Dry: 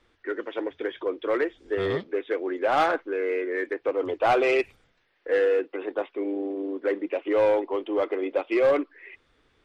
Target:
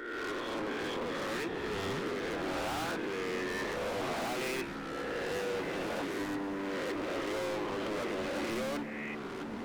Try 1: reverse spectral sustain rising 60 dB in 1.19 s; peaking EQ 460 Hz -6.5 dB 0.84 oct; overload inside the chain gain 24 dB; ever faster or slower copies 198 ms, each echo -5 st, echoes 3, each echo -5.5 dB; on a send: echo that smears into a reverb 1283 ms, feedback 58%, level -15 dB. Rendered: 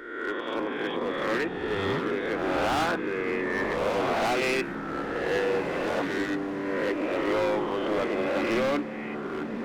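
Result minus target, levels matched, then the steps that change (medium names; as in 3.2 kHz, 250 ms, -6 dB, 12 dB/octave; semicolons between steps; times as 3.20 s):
overload inside the chain: distortion -6 dB
change: overload inside the chain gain 35.5 dB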